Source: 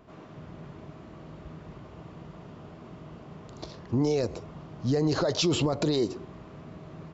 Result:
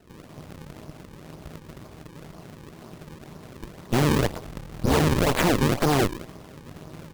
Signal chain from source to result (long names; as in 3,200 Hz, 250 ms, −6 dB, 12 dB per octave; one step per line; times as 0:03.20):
0:04.44–0:05.00: sub-octave generator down 2 octaves, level +1 dB
sample-and-hold swept by an LFO 37×, swing 160% 2 Hz
harmonic generator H 2 −6 dB, 4 −7 dB, 8 −11 dB, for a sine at −13.5 dBFS
level +1 dB